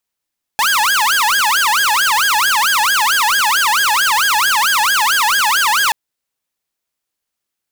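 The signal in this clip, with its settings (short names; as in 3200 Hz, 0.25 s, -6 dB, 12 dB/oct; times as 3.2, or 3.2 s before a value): siren wail 835–1650 Hz 4.5/s saw -9 dBFS 5.33 s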